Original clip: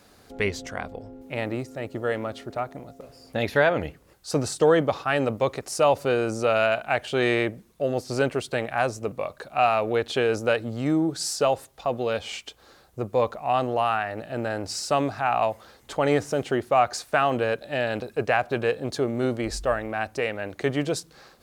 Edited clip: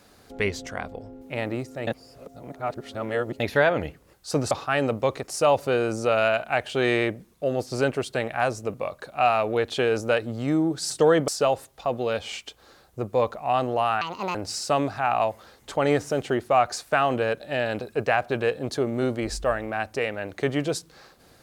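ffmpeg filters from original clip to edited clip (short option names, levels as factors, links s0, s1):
-filter_complex "[0:a]asplit=8[s0][s1][s2][s3][s4][s5][s6][s7];[s0]atrim=end=1.872[s8];[s1]atrim=start=1.868:end=3.402,asetpts=PTS-STARTPTS,areverse[s9];[s2]atrim=start=3.398:end=4.512[s10];[s3]atrim=start=4.888:end=11.282[s11];[s4]atrim=start=4.508:end=4.892[s12];[s5]atrim=start=11.278:end=14.014[s13];[s6]atrim=start=14.01:end=14.56,asetpts=PTS-STARTPTS,asetrate=71442,aresample=44100,atrim=end_sample=14972,asetpts=PTS-STARTPTS[s14];[s7]atrim=start=14.556[s15];[s8][s9]acrossfade=d=0.004:c1=hsin:c2=hsin[s16];[s16][s10]acrossfade=d=0.004:c1=hsin:c2=hsin[s17];[s17][s11]acrossfade=d=0.004:c1=hsin:c2=hsin[s18];[s18][s12]acrossfade=d=0.004:c1=hsin:c2=hsin[s19];[s19][s13]acrossfade=d=0.004:c1=hsin:c2=hsin[s20];[s20][s14]acrossfade=d=0.004:c1=hsin:c2=hsin[s21];[s21][s15]acrossfade=d=0.004:c1=hsin:c2=hsin"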